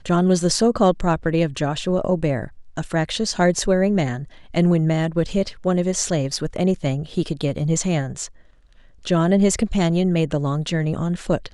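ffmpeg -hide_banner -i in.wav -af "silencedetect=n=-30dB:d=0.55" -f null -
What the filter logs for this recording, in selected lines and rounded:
silence_start: 8.27
silence_end: 9.05 | silence_duration: 0.79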